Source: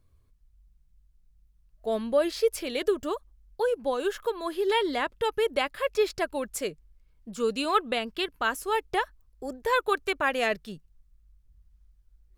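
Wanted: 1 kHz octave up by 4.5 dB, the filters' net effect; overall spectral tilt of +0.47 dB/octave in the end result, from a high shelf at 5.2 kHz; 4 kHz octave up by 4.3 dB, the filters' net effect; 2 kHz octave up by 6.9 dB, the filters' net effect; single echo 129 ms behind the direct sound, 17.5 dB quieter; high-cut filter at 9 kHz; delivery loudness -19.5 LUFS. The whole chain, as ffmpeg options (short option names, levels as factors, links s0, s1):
-af "lowpass=9000,equalizer=f=1000:t=o:g=3.5,equalizer=f=2000:t=o:g=7.5,equalizer=f=4000:t=o:g=4,highshelf=f=5200:g=-4.5,aecho=1:1:129:0.133,volume=1.88"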